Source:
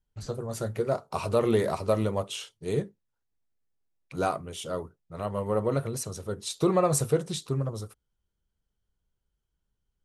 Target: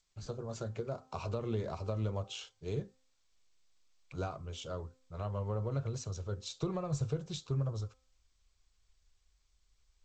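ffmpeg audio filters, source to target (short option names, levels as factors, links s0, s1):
-filter_complex "[0:a]bandreject=f=1900:w=7.7,bandreject=f=259.2:t=h:w=4,bandreject=f=518.4:t=h:w=4,bandreject=f=777.6:t=h:w=4,bandreject=f=1036.8:t=h:w=4,bandreject=f=1296:t=h:w=4,bandreject=f=1555.2:t=h:w=4,bandreject=f=1814.4:t=h:w=4,asubboost=boost=6.5:cutoff=81,acrossover=split=230[s0][s1];[s1]acompressor=threshold=0.0282:ratio=6[s2];[s0][s2]amix=inputs=2:normalize=0,volume=0.501" -ar 16000 -c:a g722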